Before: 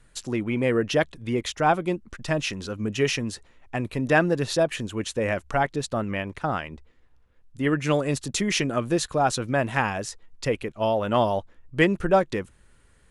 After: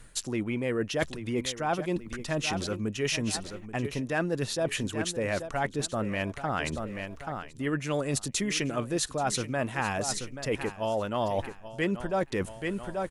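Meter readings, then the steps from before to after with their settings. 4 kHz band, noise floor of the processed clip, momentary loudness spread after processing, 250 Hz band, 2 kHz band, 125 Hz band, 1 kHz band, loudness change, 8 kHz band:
-2.5 dB, -48 dBFS, 5 LU, -4.5 dB, -5.5 dB, -4.5 dB, -6.5 dB, -5.5 dB, +0.5 dB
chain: high shelf 7100 Hz +7.5 dB; feedback echo 0.833 s, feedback 24%, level -15 dB; reverse; compressor 4:1, threshold -36 dBFS, peak gain reduction 18.5 dB; reverse; gain +7 dB

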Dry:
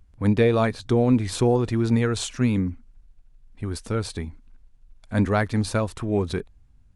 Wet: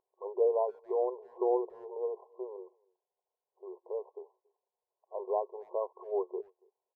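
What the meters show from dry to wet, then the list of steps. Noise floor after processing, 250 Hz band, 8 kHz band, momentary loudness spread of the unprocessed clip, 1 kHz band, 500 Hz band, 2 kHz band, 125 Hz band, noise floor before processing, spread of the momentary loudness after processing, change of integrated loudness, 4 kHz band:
under -85 dBFS, under -20 dB, under -40 dB, 13 LU, -7.5 dB, -6.5 dB, under -40 dB, under -40 dB, -54 dBFS, 19 LU, -11.0 dB, under -40 dB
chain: FFT band-pass 360–1100 Hz; speakerphone echo 0.28 s, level -28 dB; gain -6 dB

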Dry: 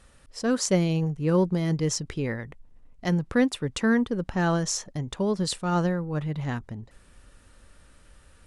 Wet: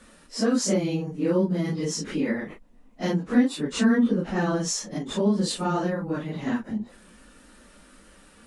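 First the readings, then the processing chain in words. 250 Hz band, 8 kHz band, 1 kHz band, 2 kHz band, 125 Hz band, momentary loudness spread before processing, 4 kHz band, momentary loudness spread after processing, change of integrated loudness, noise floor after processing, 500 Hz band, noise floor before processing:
+2.5 dB, +0.5 dB, -0.5 dB, -1.0 dB, -3.5 dB, 11 LU, +1.0 dB, 9 LU, +1.0 dB, -54 dBFS, +0.5 dB, -56 dBFS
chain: phase scrambler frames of 0.1 s; compressor 2.5:1, threshold -31 dBFS, peak gain reduction 11.5 dB; resonant low shelf 160 Hz -9.5 dB, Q 3; gain +5.5 dB

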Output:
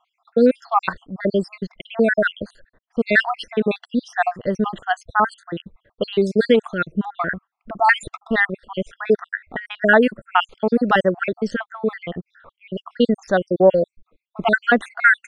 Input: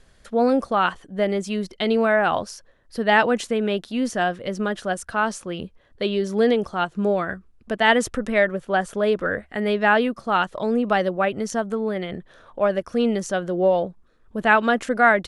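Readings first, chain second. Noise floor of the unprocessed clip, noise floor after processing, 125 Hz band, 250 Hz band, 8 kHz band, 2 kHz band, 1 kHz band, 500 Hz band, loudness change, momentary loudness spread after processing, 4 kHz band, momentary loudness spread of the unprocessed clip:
-56 dBFS, -82 dBFS, +2.0 dB, +1.5 dB, n/a, +3.5 dB, +0.5 dB, +1.5 dB, +2.0 dB, 16 LU, -0.5 dB, 12 LU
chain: random spectral dropouts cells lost 67%; low-pass opened by the level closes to 1500 Hz, open at -17.5 dBFS; gain +6.5 dB

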